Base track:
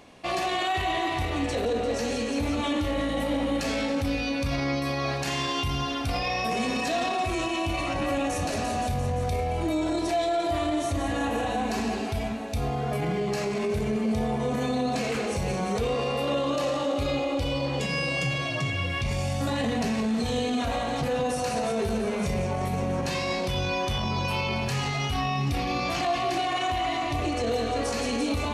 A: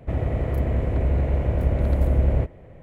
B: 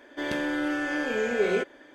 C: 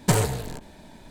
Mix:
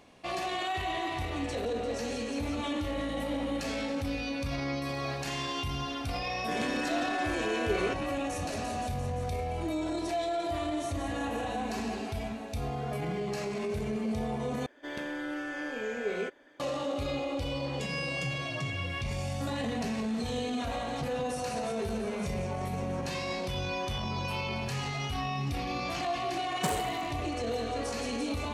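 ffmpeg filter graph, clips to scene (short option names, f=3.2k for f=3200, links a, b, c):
-filter_complex "[3:a]asplit=2[a][b];[2:a]asplit=2[c][d];[0:a]volume=-6dB[e];[a]acompressor=threshold=-37dB:ratio=6:attack=3.2:release=140:knee=1:detection=peak[f];[d]equalizer=f=350:w=6.1:g=-3.5[g];[b]highpass=f=160:w=0.5412,highpass=f=160:w=1.3066[h];[e]asplit=2[i][j];[i]atrim=end=14.664[k];[g]atrim=end=1.94,asetpts=PTS-STARTPTS,volume=-7.5dB[l];[j]atrim=start=16.596[m];[f]atrim=end=1.1,asetpts=PTS-STARTPTS,volume=-14.5dB,afade=t=in:d=0.004:c=hsin,afade=t=out:st=1.096:d=0.004:c=hsin,adelay=212121S[n];[c]atrim=end=1.94,asetpts=PTS-STARTPTS,volume=-6dB,afade=t=in:d=0.004:c=hsin,afade=t=out:st=1.936:d=0.004:c=hsin,adelay=6300[o];[h]atrim=end=1.1,asetpts=PTS-STARTPTS,volume=-10dB,afade=t=in:d=0.004:c=hsin,afade=t=out:st=1.096:d=0.004:c=hsin,adelay=26550[p];[k][l]acrossfade=d=0.004:c1=hsin:c2=hsin[q];[q][m]acrossfade=d=0.004:c1=hsin:c2=hsin[r];[r][n][o][p]amix=inputs=4:normalize=0"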